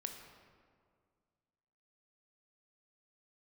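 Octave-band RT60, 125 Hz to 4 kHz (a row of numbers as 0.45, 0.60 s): 2.4, 2.3, 2.1, 1.9, 1.5, 1.1 s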